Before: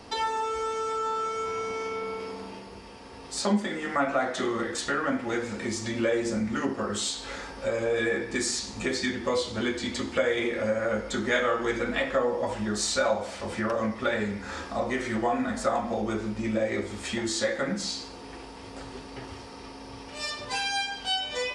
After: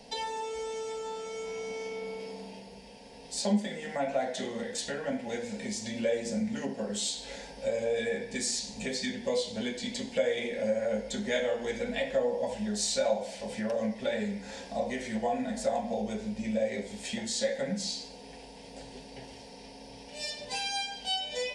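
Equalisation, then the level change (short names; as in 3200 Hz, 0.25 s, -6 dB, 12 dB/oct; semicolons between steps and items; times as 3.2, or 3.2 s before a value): fixed phaser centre 330 Hz, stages 6; -1.5 dB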